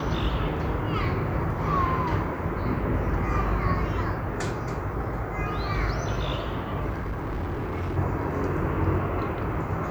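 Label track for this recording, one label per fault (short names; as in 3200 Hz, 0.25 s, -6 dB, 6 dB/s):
6.890000	7.980000	clipped -26.5 dBFS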